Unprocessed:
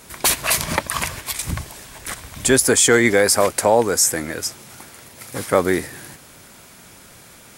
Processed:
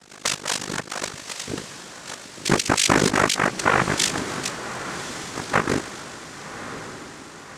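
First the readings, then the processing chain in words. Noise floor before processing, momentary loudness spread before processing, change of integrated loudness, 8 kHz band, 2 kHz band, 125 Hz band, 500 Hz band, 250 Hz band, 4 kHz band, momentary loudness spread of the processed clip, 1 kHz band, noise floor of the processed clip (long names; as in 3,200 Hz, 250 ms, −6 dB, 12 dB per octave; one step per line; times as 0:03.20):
−45 dBFS, 18 LU, −5.5 dB, −7.5 dB, −1.5 dB, −1.0 dB, −8.5 dB, −3.0 dB, −1.0 dB, 18 LU, 0.0 dB, −42 dBFS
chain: cochlear-implant simulation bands 3
amplitude modulation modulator 50 Hz, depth 90%
feedback delay with all-pass diffusion 1,125 ms, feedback 54%, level −11.5 dB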